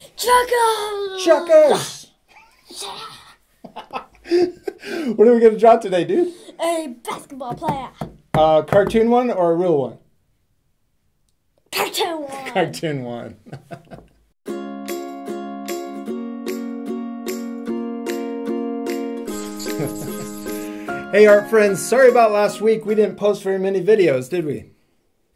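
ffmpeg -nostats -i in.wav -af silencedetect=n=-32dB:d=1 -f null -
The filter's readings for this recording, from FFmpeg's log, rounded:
silence_start: 9.93
silence_end: 11.73 | silence_duration: 1.79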